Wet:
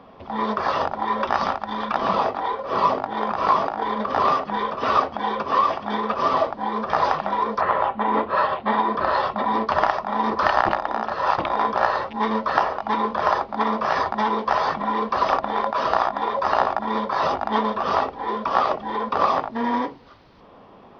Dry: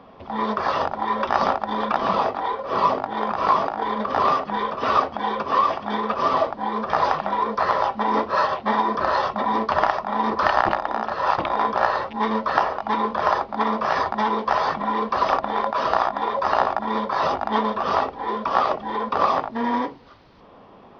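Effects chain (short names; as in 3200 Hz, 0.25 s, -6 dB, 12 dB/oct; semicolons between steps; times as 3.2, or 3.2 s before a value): 1.35–1.95 dynamic EQ 460 Hz, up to -6 dB, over -35 dBFS, Q 0.73; 7.6–9.65 LPF 2900 Hz -> 5500 Hz 24 dB/oct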